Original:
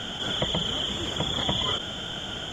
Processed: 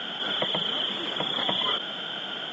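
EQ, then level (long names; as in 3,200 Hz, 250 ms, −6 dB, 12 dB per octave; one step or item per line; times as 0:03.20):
high-pass filter 160 Hz 24 dB per octave
high-frequency loss of the air 370 metres
spectral tilt +3 dB per octave
+3.5 dB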